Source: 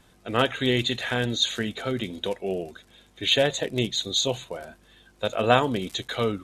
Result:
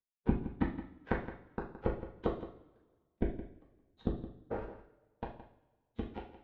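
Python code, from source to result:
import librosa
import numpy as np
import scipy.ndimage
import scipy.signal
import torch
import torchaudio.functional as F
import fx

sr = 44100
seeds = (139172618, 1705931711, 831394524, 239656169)

p1 = fx.low_shelf(x, sr, hz=460.0, db=11.5)
p2 = fx.level_steps(p1, sr, step_db=12)
p3 = p1 + (p2 * librosa.db_to_amplitude(2.5))
p4 = fx.gate_flip(p3, sr, shuts_db=-8.0, range_db=-36)
p5 = np.sign(p4) * np.maximum(np.abs(p4) - 10.0 ** (-36.5 / 20.0), 0.0)
p6 = fx.pitch_keep_formants(p5, sr, semitones=-8.0)
p7 = fx.power_curve(p6, sr, exponent=2.0)
p8 = fx.spacing_loss(p7, sr, db_at_10k=44)
p9 = fx.doubler(p8, sr, ms=39.0, db=-12)
p10 = p9 + fx.echo_single(p9, sr, ms=168, db=-13.5, dry=0)
p11 = fx.rev_double_slope(p10, sr, seeds[0], early_s=0.43, late_s=1.6, knee_db=-20, drr_db=-2.5)
y = p11 * librosa.db_to_amplitude(1.0)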